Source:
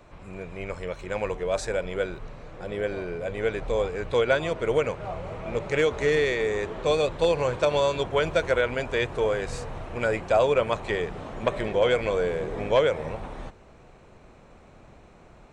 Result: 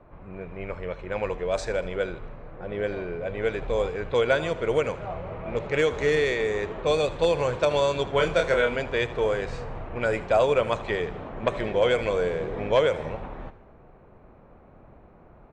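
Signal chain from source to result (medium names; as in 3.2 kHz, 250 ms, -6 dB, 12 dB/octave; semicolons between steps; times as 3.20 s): level-controlled noise filter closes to 1.3 kHz, open at -19 dBFS; 8.09–8.76 s: doubling 29 ms -4 dB; on a send: feedback delay 78 ms, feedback 46%, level -17 dB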